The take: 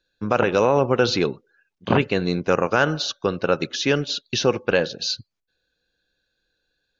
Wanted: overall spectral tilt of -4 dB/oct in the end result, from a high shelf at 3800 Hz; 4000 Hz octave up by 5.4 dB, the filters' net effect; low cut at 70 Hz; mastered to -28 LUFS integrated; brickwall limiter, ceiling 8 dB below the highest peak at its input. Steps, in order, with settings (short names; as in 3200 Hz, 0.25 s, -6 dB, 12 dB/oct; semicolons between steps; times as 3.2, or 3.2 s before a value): HPF 70 Hz; high shelf 3800 Hz -4 dB; bell 4000 Hz +8.5 dB; gain -4.5 dB; limiter -16 dBFS